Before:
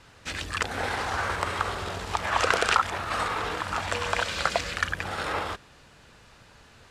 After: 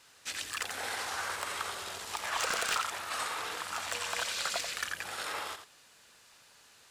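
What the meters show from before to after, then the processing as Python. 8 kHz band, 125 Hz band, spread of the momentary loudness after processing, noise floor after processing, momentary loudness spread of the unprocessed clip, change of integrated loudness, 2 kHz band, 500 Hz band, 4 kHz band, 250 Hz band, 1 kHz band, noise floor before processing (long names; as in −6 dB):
+1.5 dB, −20.5 dB, 7 LU, −60 dBFS, 8 LU, −6.5 dB, −7.0 dB, −11.5 dB, −3.5 dB, −14.5 dB, −9.0 dB, −54 dBFS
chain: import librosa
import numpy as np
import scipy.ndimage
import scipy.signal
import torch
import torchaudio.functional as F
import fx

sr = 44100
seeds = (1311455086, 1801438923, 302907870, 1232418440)

p1 = fx.riaa(x, sr, side='recording')
p2 = p1 + fx.echo_single(p1, sr, ms=86, db=-9.5, dry=0)
p3 = np.clip(p2, -10.0 ** (-16.0 / 20.0), 10.0 ** (-16.0 / 20.0))
y = F.gain(torch.from_numpy(p3), -9.0).numpy()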